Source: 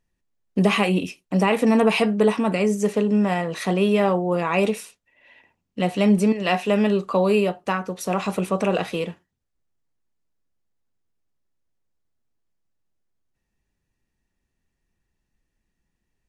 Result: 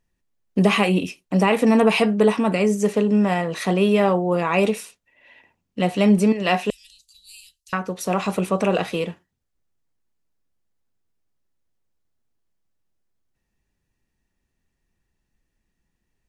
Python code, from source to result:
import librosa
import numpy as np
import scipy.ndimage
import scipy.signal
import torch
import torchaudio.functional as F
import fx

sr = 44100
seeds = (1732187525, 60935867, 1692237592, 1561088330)

y = fx.cheby2_bandstop(x, sr, low_hz=220.0, high_hz=1000.0, order=4, stop_db=80, at=(6.7, 7.73))
y = F.gain(torch.from_numpy(y), 1.5).numpy()